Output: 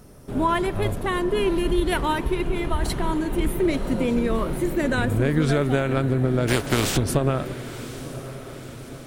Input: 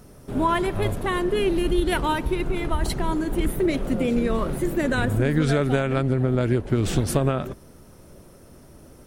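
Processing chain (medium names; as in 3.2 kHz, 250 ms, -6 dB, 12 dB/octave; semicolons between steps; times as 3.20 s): 6.47–6.96 s: spectral contrast reduction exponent 0.5; echo that smears into a reverb 1018 ms, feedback 56%, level -14 dB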